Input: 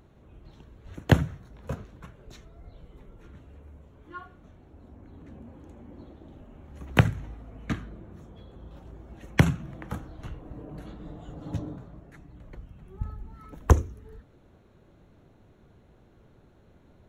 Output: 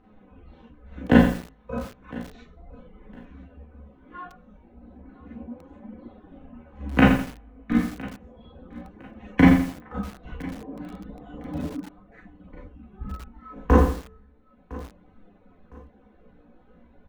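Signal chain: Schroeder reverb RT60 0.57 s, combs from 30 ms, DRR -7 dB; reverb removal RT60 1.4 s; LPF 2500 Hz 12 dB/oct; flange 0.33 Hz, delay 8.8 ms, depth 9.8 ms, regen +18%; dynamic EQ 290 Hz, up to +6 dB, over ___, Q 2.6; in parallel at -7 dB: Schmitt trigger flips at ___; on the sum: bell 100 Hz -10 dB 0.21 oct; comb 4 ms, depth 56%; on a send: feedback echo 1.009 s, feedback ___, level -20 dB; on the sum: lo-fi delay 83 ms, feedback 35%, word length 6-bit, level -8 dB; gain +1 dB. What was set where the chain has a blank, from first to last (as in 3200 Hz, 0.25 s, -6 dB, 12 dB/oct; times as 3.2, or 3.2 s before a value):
-46 dBFS, -17.5 dBFS, 30%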